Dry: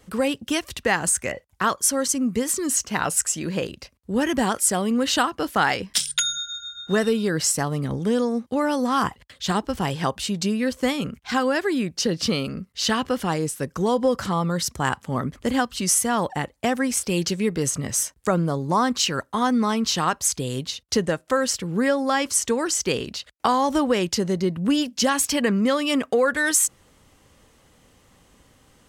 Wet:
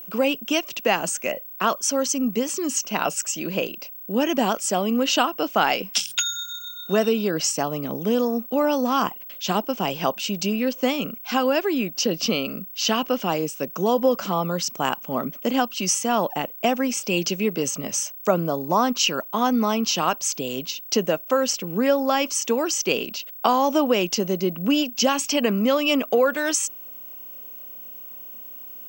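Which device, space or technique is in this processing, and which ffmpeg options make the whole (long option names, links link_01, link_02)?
old television with a line whistle: -af "highpass=frequency=180:width=0.5412,highpass=frequency=180:width=1.3066,equalizer=frequency=640:width_type=q:width=4:gain=6,equalizer=frequency=1800:width_type=q:width=4:gain=-8,equalizer=frequency=2700:width_type=q:width=4:gain=8,equalizer=frequency=4000:width_type=q:width=4:gain=-5,equalizer=frequency=5900:width_type=q:width=4:gain=4,lowpass=frequency=7000:width=0.5412,lowpass=frequency=7000:width=1.3066,aeval=exprs='val(0)+0.0158*sin(2*PI*15734*n/s)':channel_layout=same"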